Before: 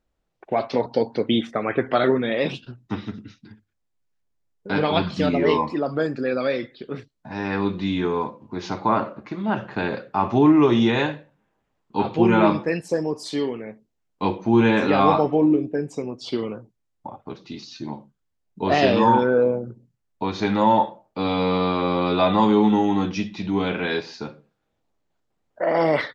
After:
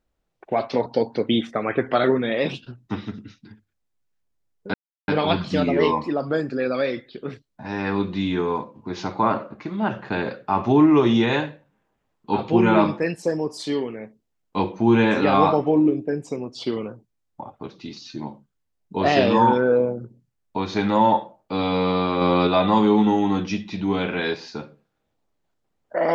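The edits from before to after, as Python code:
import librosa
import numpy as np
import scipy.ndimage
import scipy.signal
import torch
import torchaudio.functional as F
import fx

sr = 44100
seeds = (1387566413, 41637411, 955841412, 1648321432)

y = fx.edit(x, sr, fx.insert_silence(at_s=4.74, length_s=0.34),
    fx.clip_gain(start_s=21.87, length_s=0.26, db=3.5), tone=tone)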